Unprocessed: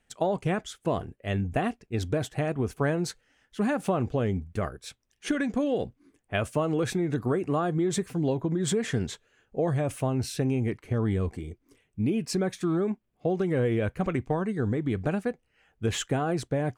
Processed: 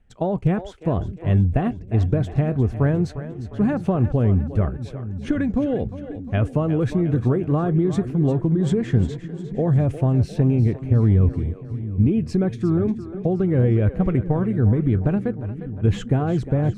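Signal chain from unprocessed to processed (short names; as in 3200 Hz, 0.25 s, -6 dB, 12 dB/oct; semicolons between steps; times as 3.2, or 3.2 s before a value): RIAA curve playback; split-band echo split 310 Hz, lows 0.796 s, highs 0.354 s, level -12 dB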